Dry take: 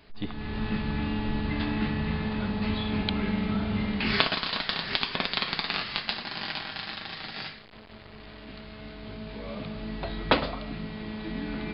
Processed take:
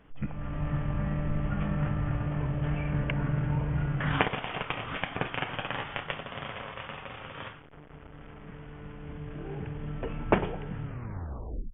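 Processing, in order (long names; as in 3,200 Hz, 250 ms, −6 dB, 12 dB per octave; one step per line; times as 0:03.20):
turntable brake at the end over 0.90 s
high-shelf EQ 3,200 Hz −11 dB
pitch shifter −6.5 semitones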